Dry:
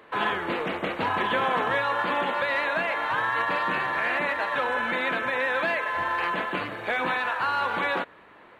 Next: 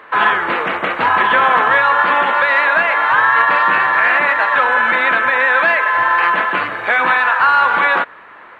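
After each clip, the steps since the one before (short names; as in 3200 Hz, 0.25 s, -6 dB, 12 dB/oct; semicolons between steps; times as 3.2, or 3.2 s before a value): bell 1400 Hz +13 dB 2.1 oct; gain +2.5 dB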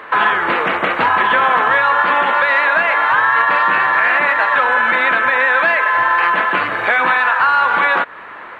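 compressor 2:1, threshold -22 dBFS, peak gain reduction 7.5 dB; gain +6 dB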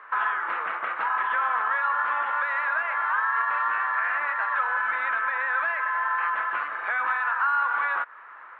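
band-pass 1300 Hz, Q 2; gain -9 dB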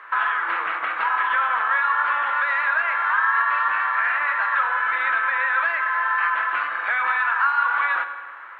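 high shelf 2000 Hz +11.5 dB; on a send at -7.5 dB: reverb RT60 1.5 s, pre-delay 3 ms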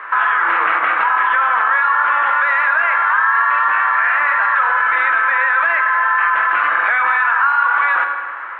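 LPF 2700 Hz 12 dB/oct; in parallel at -0.5 dB: negative-ratio compressor -27 dBFS, ratio -1; on the sum: gain +3.5 dB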